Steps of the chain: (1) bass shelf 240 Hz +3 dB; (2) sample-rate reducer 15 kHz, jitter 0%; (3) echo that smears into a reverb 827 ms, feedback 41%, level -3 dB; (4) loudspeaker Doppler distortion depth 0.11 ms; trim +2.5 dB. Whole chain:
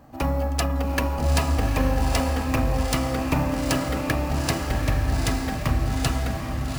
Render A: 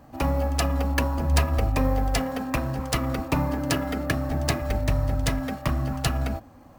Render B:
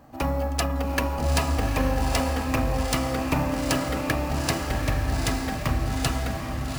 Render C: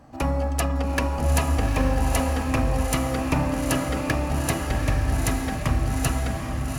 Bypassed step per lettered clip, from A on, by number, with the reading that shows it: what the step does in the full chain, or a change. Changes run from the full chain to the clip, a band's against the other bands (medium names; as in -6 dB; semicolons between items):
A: 3, momentary loudness spread change +2 LU; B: 1, loudness change -1.5 LU; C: 2, distortion -10 dB